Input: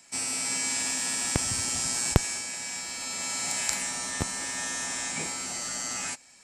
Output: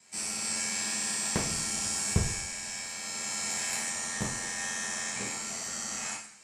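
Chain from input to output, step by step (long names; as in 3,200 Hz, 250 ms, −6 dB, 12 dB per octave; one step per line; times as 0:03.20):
ring modulation 44 Hz
coupled-rooms reverb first 0.55 s, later 2.1 s, from −24 dB, DRR −5 dB
level −5.5 dB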